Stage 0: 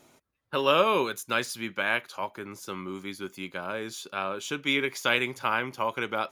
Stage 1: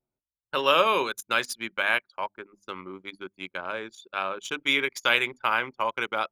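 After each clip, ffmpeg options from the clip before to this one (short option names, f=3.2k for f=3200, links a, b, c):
-af "bandreject=f=50:t=h:w=6,bandreject=f=100:t=h:w=6,bandreject=f=150:t=h:w=6,bandreject=f=200:t=h:w=6,bandreject=f=250:t=h:w=6,bandreject=f=300:t=h:w=6,anlmdn=3.98,lowshelf=f=410:g=-10,volume=3.5dB"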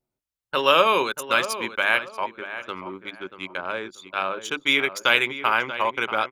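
-filter_complex "[0:a]asplit=2[a][b];[b]adelay=635,lowpass=f=2.2k:p=1,volume=-11dB,asplit=2[c][d];[d]adelay=635,lowpass=f=2.2k:p=1,volume=0.29,asplit=2[e][f];[f]adelay=635,lowpass=f=2.2k:p=1,volume=0.29[g];[a][c][e][g]amix=inputs=4:normalize=0,volume=3.5dB"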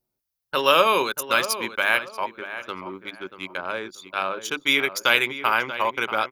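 -af "aexciter=amount=2.1:drive=2.2:freq=4.4k"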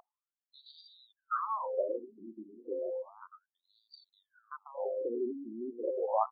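-af "aeval=exprs='val(0)+0.0224*sin(2*PI*520*n/s)':c=same,asuperstop=centerf=2400:order=12:qfactor=0.7,afftfilt=real='re*between(b*sr/1024,260*pow(3400/260,0.5+0.5*sin(2*PI*0.32*pts/sr))/1.41,260*pow(3400/260,0.5+0.5*sin(2*PI*0.32*pts/sr))*1.41)':imag='im*between(b*sr/1024,260*pow(3400/260,0.5+0.5*sin(2*PI*0.32*pts/sr))/1.41,260*pow(3400/260,0.5+0.5*sin(2*PI*0.32*pts/sr))*1.41)':win_size=1024:overlap=0.75"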